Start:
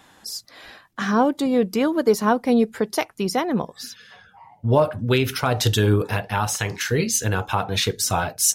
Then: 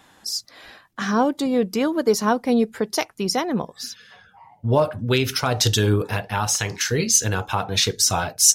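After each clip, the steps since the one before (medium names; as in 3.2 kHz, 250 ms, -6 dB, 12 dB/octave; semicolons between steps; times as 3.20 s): dynamic bell 5.6 kHz, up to +8 dB, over -40 dBFS, Q 1.2; trim -1 dB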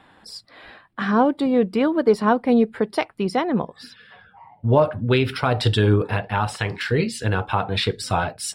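boxcar filter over 7 samples; trim +2 dB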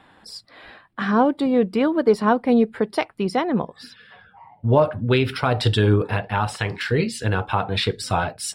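no audible change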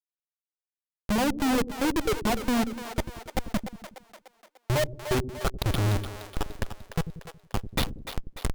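expander on every frequency bin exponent 3; Schmitt trigger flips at -23 dBFS; two-band feedback delay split 410 Hz, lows 92 ms, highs 296 ms, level -9.5 dB; trim +4.5 dB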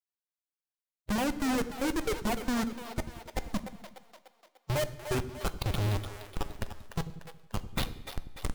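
coarse spectral quantiser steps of 15 dB; on a send at -13.5 dB: reverberation RT60 0.85 s, pre-delay 13 ms; on the sum: trim -4.5 dB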